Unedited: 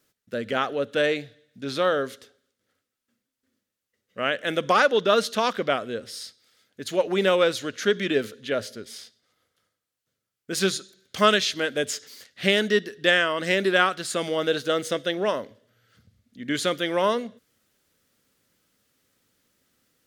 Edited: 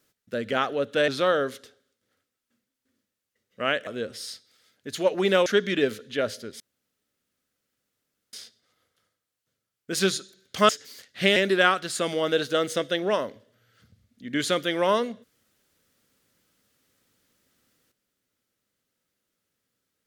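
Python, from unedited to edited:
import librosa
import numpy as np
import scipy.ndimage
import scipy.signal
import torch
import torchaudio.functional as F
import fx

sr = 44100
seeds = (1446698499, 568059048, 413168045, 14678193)

y = fx.edit(x, sr, fx.cut(start_s=1.08, length_s=0.58),
    fx.cut(start_s=4.45, length_s=1.35),
    fx.cut(start_s=7.39, length_s=0.4),
    fx.insert_room_tone(at_s=8.93, length_s=1.73),
    fx.cut(start_s=11.29, length_s=0.62),
    fx.cut(start_s=12.58, length_s=0.93), tone=tone)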